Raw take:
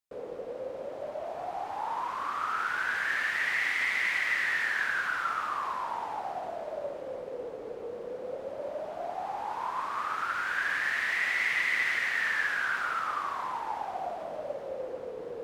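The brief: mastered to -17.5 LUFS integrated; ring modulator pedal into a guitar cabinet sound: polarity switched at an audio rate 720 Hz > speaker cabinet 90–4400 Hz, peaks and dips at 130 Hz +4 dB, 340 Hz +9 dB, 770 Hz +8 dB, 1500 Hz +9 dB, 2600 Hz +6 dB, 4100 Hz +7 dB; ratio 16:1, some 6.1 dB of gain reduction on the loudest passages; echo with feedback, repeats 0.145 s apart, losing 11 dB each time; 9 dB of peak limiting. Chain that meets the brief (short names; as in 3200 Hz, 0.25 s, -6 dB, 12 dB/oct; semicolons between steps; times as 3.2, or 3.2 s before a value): compressor 16:1, threshold -31 dBFS; limiter -32 dBFS; feedback echo 0.145 s, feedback 28%, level -11 dB; polarity switched at an audio rate 720 Hz; speaker cabinet 90–4400 Hz, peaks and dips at 130 Hz +4 dB, 340 Hz +9 dB, 770 Hz +8 dB, 1500 Hz +9 dB, 2600 Hz +6 dB, 4100 Hz +7 dB; gain +16.5 dB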